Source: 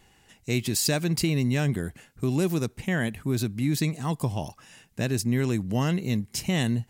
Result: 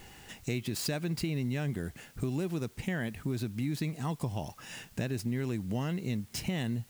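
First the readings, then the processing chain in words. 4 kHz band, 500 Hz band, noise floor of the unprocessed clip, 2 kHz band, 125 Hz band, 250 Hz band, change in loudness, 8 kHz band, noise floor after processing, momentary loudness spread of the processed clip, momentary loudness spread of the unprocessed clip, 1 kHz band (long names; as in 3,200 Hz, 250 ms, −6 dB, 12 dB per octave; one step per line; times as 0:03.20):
−8.5 dB, −7.5 dB, −61 dBFS, −7.5 dB, −7.0 dB, −7.5 dB, −8.0 dB, −11.0 dB, −58 dBFS, 7 LU, 8 LU, −7.0 dB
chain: running median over 3 samples
notch filter 1,100 Hz, Q 27
dynamic equaliser 6,900 Hz, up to −6 dB, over −45 dBFS, Q 0.93
downward compressor 3 to 1, threshold −43 dBFS, peak gain reduction 17 dB
background noise white −69 dBFS
level +7.5 dB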